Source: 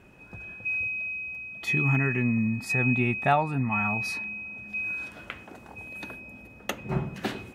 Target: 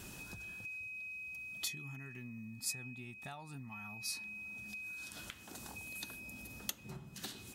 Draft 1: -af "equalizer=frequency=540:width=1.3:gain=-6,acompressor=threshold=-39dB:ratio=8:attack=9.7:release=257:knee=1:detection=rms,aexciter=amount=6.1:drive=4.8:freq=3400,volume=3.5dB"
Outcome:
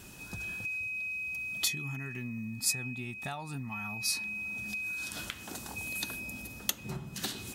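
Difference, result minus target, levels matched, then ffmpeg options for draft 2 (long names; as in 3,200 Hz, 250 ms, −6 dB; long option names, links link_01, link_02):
downward compressor: peak gain reduction −9 dB
-af "equalizer=frequency=540:width=1.3:gain=-6,acompressor=threshold=-49.5dB:ratio=8:attack=9.7:release=257:knee=1:detection=rms,aexciter=amount=6.1:drive=4.8:freq=3400,volume=3.5dB"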